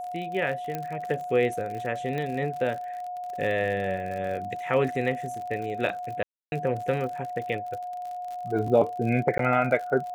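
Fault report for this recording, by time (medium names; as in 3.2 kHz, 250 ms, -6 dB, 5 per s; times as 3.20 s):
crackle 51 per s -34 dBFS
whine 720 Hz -32 dBFS
0.75 s: pop -17 dBFS
2.18 s: pop -20 dBFS
6.23–6.52 s: dropout 291 ms
9.38–9.39 s: dropout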